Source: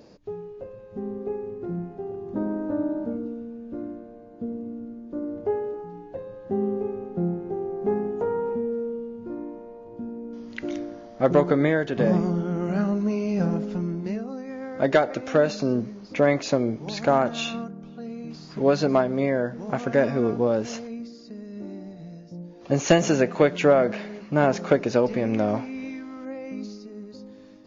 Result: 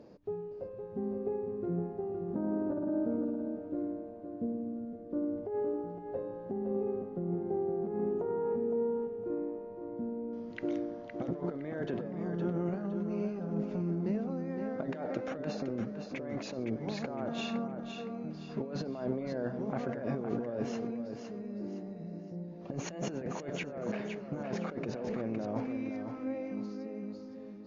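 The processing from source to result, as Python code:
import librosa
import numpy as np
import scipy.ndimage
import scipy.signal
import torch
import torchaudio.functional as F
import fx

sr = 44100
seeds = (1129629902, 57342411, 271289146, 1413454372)

y = fx.highpass(x, sr, hz=490.0, slope=6)
y = fx.tilt_eq(y, sr, slope=-4.0)
y = fx.over_compress(y, sr, threshold_db=-27.0, ratio=-1.0)
y = fx.echo_feedback(y, sr, ms=513, feedback_pct=33, wet_db=-7.0)
y = y * 10.0 ** (-8.0 / 20.0)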